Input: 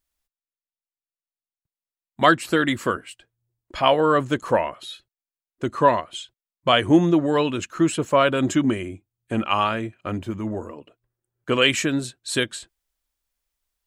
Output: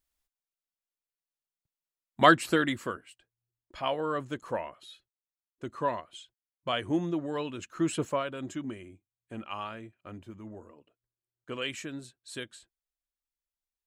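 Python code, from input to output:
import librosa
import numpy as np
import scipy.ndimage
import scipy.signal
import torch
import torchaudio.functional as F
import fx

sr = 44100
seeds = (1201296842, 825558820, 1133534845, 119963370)

y = fx.gain(x, sr, db=fx.line((2.44, -3.0), (2.98, -13.0), (7.56, -13.0), (8.05, -5.5), (8.24, -16.5)))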